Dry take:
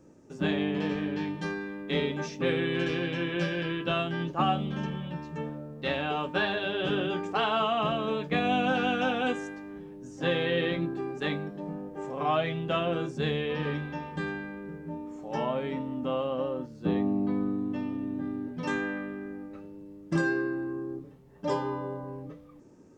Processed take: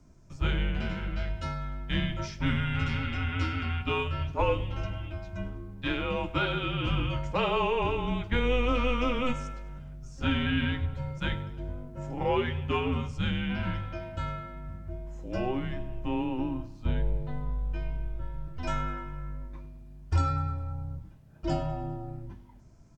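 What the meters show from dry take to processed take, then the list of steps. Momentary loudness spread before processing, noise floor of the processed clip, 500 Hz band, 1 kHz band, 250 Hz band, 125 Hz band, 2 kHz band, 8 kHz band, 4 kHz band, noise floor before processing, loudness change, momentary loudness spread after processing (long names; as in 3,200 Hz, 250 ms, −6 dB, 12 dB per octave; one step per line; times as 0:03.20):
12 LU, −50 dBFS, −3.5 dB, −2.5 dB, −3.0 dB, +4.5 dB, −2.5 dB, can't be measured, −1.5 dB, −51 dBFS, −1.0 dB, 13 LU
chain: frequency shifter −250 Hz
on a send: repeating echo 102 ms, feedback 56%, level −19 dB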